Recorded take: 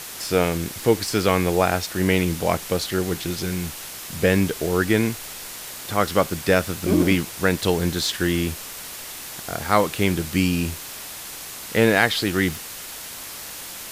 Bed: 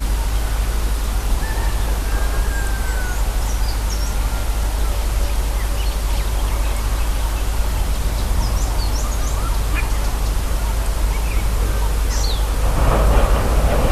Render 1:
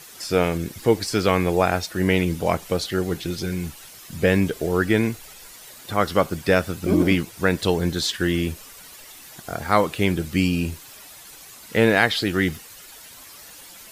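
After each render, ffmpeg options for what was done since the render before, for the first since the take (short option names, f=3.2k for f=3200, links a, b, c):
-af "afftdn=nr=11:nf=-36"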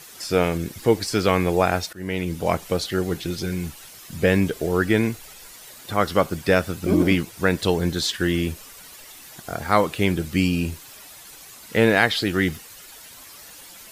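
-filter_complex "[0:a]asplit=2[a][b];[a]atrim=end=1.93,asetpts=PTS-STARTPTS,afade=t=out:st=1.926:d=0.004:c=hsin:silence=0.141254[c];[b]atrim=start=1.93,asetpts=PTS-STARTPTS,afade=t=in:d=0.59:silence=0.141254[d];[c][d]concat=n=2:v=0:a=1"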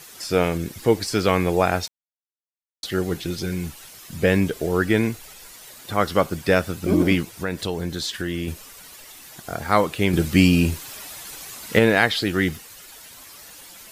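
-filter_complex "[0:a]asettb=1/sr,asplit=3[a][b][c];[a]atrim=end=7.294[d];[b]atrim=start=7.29:end=8.48,asetpts=PTS-STARTPTS,afade=t=in:d=0.004:c=qsin,afade=t=out:st=1.186:d=0.004:c=qsin,acompressor=threshold=-26dB:ratio=2:attack=3.2:release=140:knee=1:detection=peak[e];[c]atrim=start=8.476[f];[d][e]acrossfade=d=0.004:c1=hsin:c2=qsin[g];[g][f]acrossfade=d=0.004:c1=qsin:c2=hsin,asettb=1/sr,asplit=3[h][i][j];[h]atrim=end=10.134[k];[i]atrim=start=10.13:end=11.79,asetpts=PTS-STARTPTS,afade=t=in:d=0.004:c=qsin,afade=t=out:st=1.656:d=0.004:c=qsin,acontrast=49[l];[j]atrim=start=11.786[m];[k][l]acrossfade=d=0.004:c1=hsin:c2=qsin[n];[n][m]acrossfade=d=0.004:c1=qsin:c2=hsin,asplit=3[o][p][q];[o]atrim=end=1.88,asetpts=PTS-STARTPTS,afade=t=out:st=1.876:d=0.004:c=hsin[r];[p]atrim=start=1.88:end=2.83,asetpts=PTS-STARTPTS,volume=0[s];[q]atrim=start=2.83,asetpts=PTS-STARTPTS,afade=t=in:d=0.004:c=hsin[t];[r][s][t]concat=n=3:v=0:a=1"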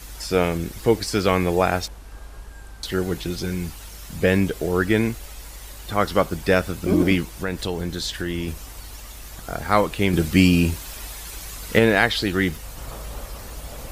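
-filter_complex "[1:a]volume=-20.5dB[a];[0:a][a]amix=inputs=2:normalize=0"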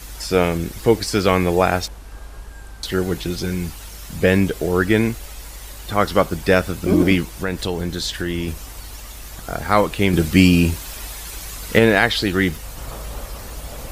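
-af "volume=3dB,alimiter=limit=-1dB:level=0:latency=1"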